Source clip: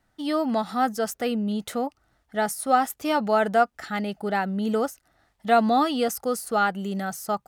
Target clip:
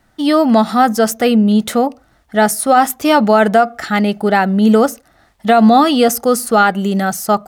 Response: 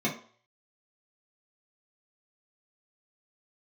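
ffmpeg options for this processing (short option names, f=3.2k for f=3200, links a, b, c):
-filter_complex "[0:a]asplit=2[a][b];[1:a]atrim=start_sample=2205,afade=t=out:st=0.24:d=0.01,atrim=end_sample=11025[c];[b][c]afir=irnorm=-1:irlink=0,volume=-28.5dB[d];[a][d]amix=inputs=2:normalize=0,alimiter=level_in=13.5dB:limit=-1dB:release=50:level=0:latency=1,volume=-1dB"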